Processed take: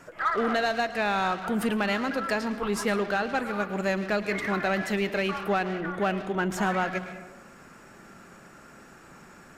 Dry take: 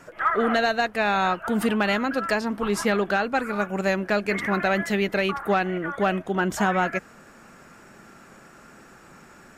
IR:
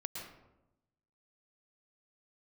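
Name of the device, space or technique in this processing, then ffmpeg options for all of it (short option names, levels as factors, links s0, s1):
saturated reverb return: -filter_complex "[0:a]asplit=2[s0][s1];[1:a]atrim=start_sample=2205[s2];[s1][s2]afir=irnorm=-1:irlink=0,asoftclip=type=tanh:threshold=0.0422,volume=0.944[s3];[s0][s3]amix=inputs=2:normalize=0,volume=0.501"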